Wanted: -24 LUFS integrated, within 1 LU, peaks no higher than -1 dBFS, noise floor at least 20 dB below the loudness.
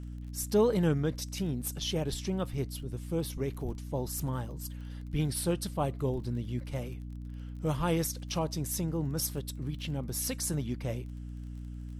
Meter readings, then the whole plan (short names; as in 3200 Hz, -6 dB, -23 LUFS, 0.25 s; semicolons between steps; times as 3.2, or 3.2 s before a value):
ticks 25/s; hum 60 Hz; harmonics up to 300 Hz; hum level -38 dBFS; loudness -33.5 LUFS; peak -14.5 dBFS; loudness target -24.0 LUFS
-> de-click; notches 60/120/180/240/300 Hz; gain +9.5 dB